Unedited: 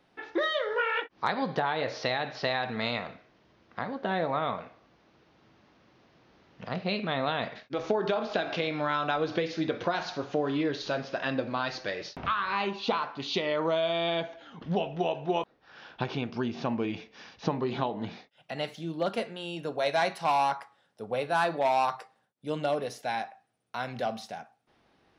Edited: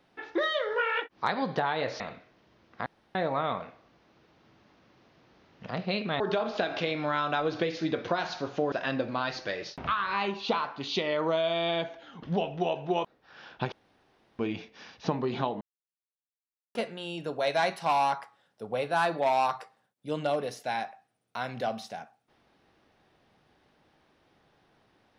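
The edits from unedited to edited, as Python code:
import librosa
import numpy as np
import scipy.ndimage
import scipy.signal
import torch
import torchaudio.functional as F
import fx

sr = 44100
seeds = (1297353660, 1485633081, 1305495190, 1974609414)

y = fx.edit(x, sr, fx.cut(start_s=2.0, length_s=0.98),
    fx.room_tone_fill(start_s=3.84, length_s=0.29),
    fx.cut(start_s=7.18, length_s=0.78),
    fx.cut(start_s=10.48, length_s=0.63),
    fx.room_tone_fill(start_s=16.11, length_s=0.67),
    fx.silence(start_s=18.0, length_s=1.14), tone=tone)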